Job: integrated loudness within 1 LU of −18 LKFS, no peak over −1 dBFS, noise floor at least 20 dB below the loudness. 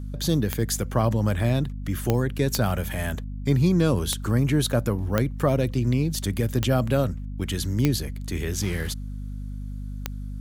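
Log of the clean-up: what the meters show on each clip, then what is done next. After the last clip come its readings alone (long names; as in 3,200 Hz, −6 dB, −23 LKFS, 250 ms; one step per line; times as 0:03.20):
number of clicks 8; mains hum 50 Hz; hum harmonics up to 250 Hz; level of the hum −30 dBFS; integrated loudness −25.0 LKFS; sample peak −5.0 dBFS; target loudness −18.0 LKFS
→ click removal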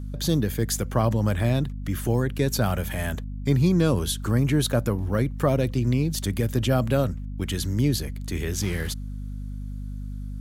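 number of clicks 0; mains hum 50 Hz; hum harmonics up to 250 Hz; level of the hum −30 dBFS
→ mains-hum notches 50/100/150/200/250 Hz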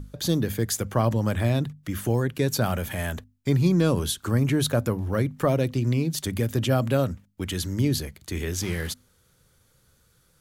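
mains hum none found; integrated loudness −25.5 LKFS; sample peak −9.5 dBFS; target loudness −18.0 LKFS
→ level +7.5 dB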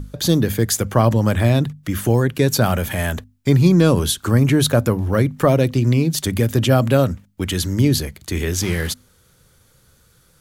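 integrated loudness −18.0 LKFS; sample peak −2.0 dBFS; background noise floor −56 dBFS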